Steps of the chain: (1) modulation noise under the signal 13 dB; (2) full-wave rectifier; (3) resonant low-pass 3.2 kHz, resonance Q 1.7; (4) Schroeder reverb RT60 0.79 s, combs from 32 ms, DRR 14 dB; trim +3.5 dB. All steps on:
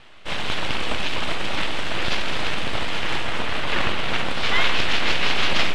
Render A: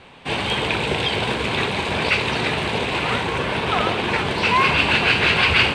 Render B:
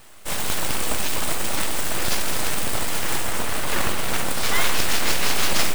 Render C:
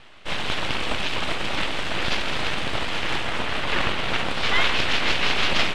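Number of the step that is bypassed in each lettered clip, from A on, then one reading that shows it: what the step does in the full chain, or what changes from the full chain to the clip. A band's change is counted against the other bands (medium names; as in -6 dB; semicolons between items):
2, crest factor change +4.0 dB; 3, 2 kHz band -3.0 dB; 4, crest factor change +3.5 dB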